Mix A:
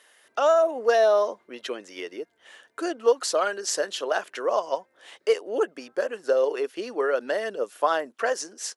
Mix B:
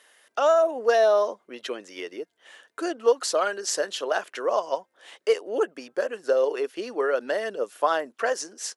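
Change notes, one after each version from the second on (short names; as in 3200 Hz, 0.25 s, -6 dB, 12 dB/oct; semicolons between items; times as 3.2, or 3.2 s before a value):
background -9.5 dB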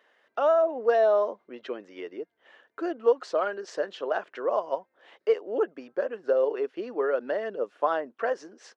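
speech: add tape spacing loss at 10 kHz 33 dB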